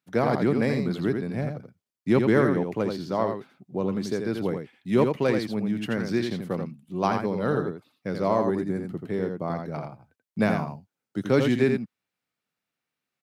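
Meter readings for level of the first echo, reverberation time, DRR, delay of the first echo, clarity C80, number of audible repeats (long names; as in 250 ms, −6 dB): −5.5 dB, no reverb audible, no reverb audible, 84 ms, no reverb audible, 1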